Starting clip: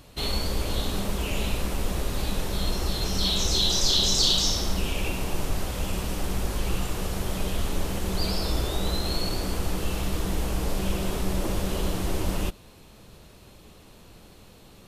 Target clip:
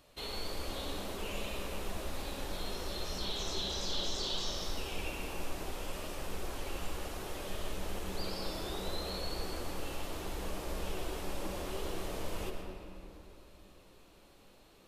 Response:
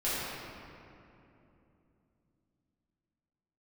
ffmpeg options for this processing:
-filter_complex "[0:a]bass=f=250:g=-9,treble=f=4k:g=-2,acrossover=split=2900[a][b];[b]acompressor=threshold=-31dB:ratio=4:attack=1:release=60[c];[a][c]amix=inputs=2:normalize=0,flanger=delay=1.6:depth=2.1:regen=75:speed=0.66:shape=sinusoidal,asplit=2[d][e];[1:a]atrim=start_sample=2205,adelay=91[f];[e][f]afir=irnorm=-1:irlink=0,volume=-12.5dB[g];[d][g]amix=inputs=2:normalize=0,volume=-5dB"

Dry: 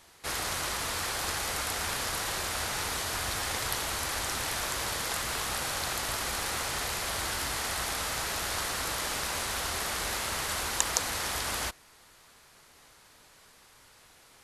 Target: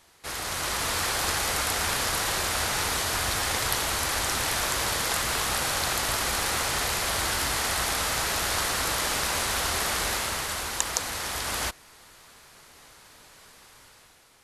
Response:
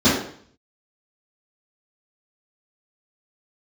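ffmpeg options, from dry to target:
-af "dynaudnorm=f=110:g=11:m=7dB,volume=-1.5dB"

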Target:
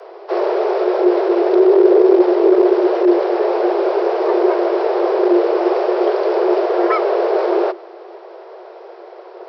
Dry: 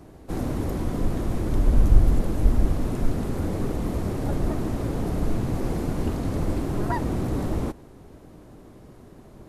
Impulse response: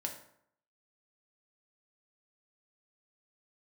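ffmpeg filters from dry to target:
-af "aresample=11025,aresample=44100,aeval=exprs='0.708*sin(PI/2*3.16*val(0)/0.708)':c=same,afreqshift=340,volume=-4dB"

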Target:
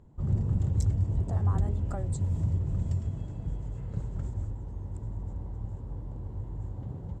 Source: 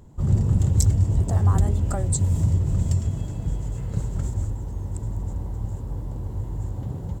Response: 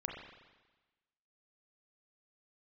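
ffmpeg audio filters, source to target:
-af "aemphasis=mode=reproduction:type=75kf,volume=-7.5dB"

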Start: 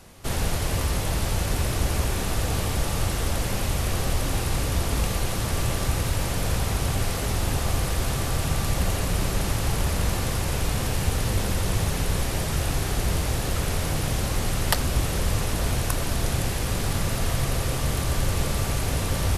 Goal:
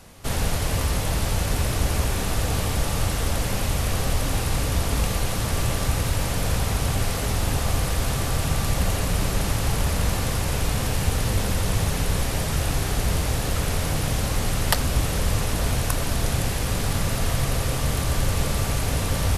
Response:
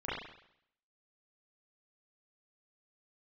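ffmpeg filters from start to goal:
-af "bandreject=f=360:w=12,volume=1.5dB"

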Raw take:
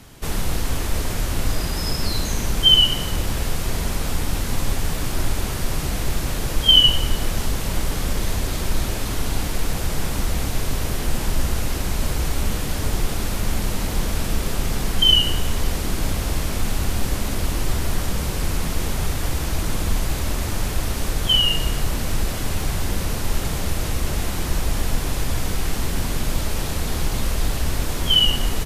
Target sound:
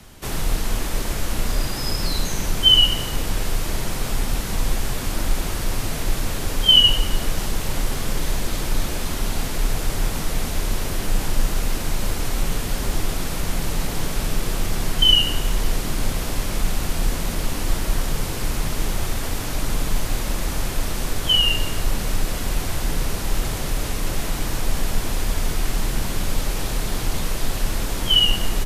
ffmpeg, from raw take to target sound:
-af "afreqshift=-39"

